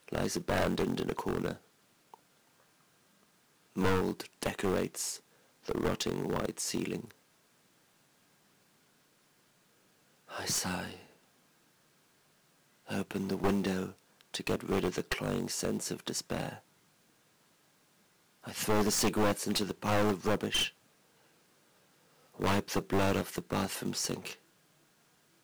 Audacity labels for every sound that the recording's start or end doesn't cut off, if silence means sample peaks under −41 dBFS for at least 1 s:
3.760000	7.110000	sound
10.310000	10.960000	sound
12.890000	16.570000	sound
18.460000	20.690000	sound
22.400000	24.330000	sound